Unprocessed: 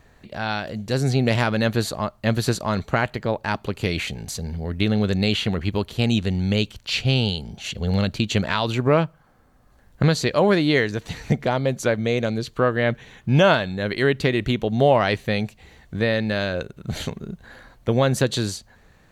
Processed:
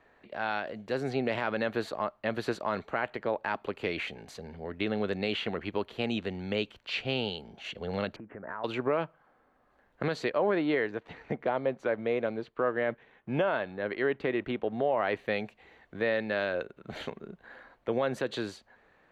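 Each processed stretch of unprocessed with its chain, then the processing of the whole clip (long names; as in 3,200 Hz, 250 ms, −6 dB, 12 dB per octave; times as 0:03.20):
0:08.16–0:08.64: Butterworth low-pass 1,800 Hz 48 dB per octave + downward compressor 12 to 1, threshold −28 dBFS
0:10.30–0:15.16: mu-law and A-law mismatch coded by A + low-pass filter 2,100 Hz 6 dB per octave
whole clip: three-way crossover with the lows and the highs turned down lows −17 dB, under 270 Hz, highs −19 dB, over 3,100 Hz; brickwall limiter −14 dBFS; level −4 dB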